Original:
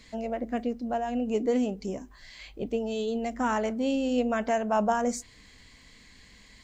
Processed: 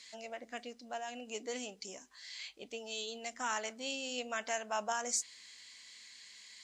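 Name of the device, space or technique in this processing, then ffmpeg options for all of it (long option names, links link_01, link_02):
piezo pickup straight into a mixer: -af "lowpass=6700,aderivative,volume=8.5dB"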